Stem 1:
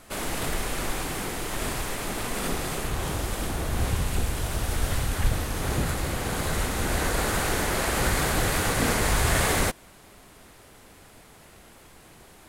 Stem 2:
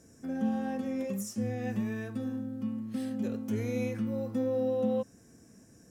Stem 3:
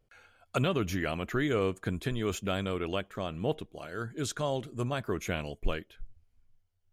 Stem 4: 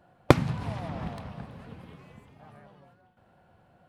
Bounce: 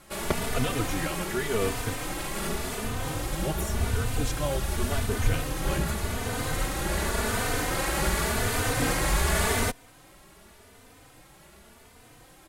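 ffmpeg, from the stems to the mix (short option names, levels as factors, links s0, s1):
-filter_complex "[0:a]volume=1.12[s0];[1:a]crystalizer=i=8:c=0,adelay=2400,volume=0.224[s1];[2:a]volume=1.33,asplit=3[s2][s3][s4];[s2]atrim=end=1.93,asetpts=PTS-STARTPTS,afade=t=out:st=1.926:d=0.004:c=hsin[s5];[s3]atrim=start=1.93:end=3.32,asetpts=PTS-STARTPTS,volume=0[s6];[s4]atrim=start=3.32,asetpts=PTS-STARTPTS,afade=t=in:d=0.004:c=hsin[s7];[s5][s6][s7]concat=n=3:v=0:a=1[s8];[3:a]volume=0.501[s9];[s0][s1][s8][s9]amix=inputs=4:normalize=0,asplit=2[s10][s11];[s11]adelay=3.2,afreqshift=0.88[s12];[s10][s12]amix=inputs=2:normalize=1"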